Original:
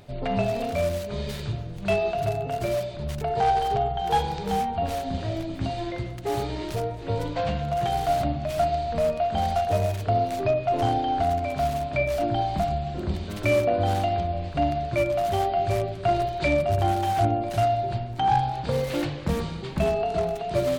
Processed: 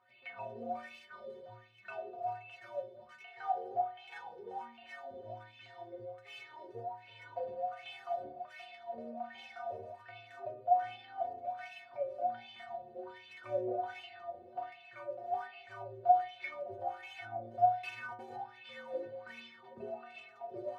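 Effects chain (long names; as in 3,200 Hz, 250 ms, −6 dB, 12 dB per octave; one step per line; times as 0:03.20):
0:17.83–0:18.36: comparator with hysteresis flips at −30 dBFS
LFO wah 1.3 Hz 430–2,700 Hz, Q 7.4
stiff-string resonator 110 Hz, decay 0.75 s, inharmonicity 0.03
level +14.5 dB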